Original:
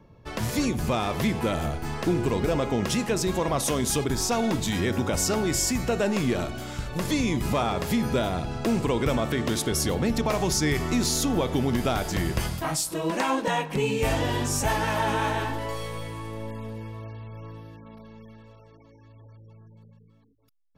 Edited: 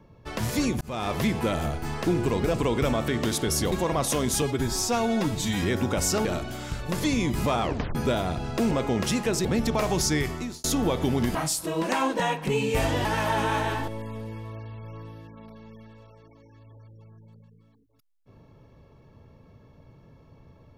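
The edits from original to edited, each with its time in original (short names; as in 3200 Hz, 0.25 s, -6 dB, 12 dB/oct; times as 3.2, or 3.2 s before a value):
0.81–1.1 fade in
2.54–3.28 swap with 8.78–9.96
3.98–4.78 stretch 1.5×
5.41–6.32 cut
7.69 tape stop 0.33 s
10.62–11.15 fade out
11.86–12.63 cut
14.33–14.75 cut
15.58–16.37 cut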